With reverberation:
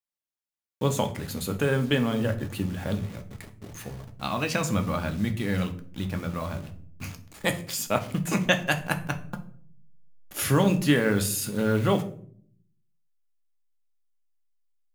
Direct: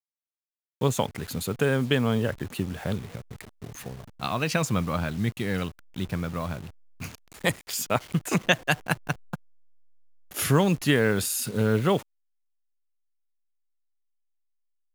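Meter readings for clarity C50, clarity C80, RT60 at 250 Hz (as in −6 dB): 14.0 dB, 18.0 dB, 0.90 s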